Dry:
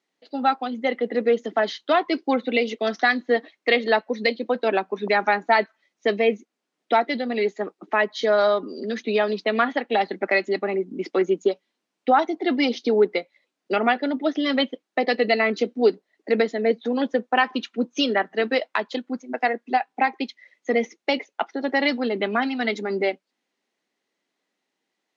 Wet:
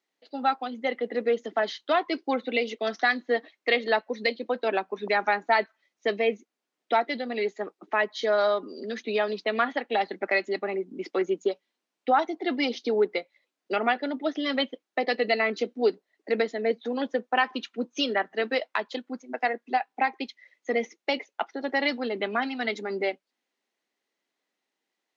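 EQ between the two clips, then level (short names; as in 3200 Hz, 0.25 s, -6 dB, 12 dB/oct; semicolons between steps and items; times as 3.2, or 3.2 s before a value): low shelf 180 Hz -10 dB; -3.5 dB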